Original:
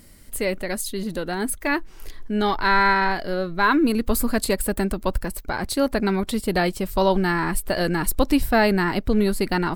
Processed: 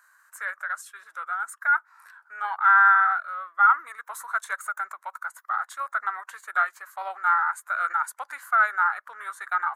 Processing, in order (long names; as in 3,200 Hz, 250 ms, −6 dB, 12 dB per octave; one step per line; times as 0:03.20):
high-pass filter 1,300 Hz 24 dB per octave
high shelf with overshoot 2,500 Hz −13 dB, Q 3
formants moved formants −3 semitones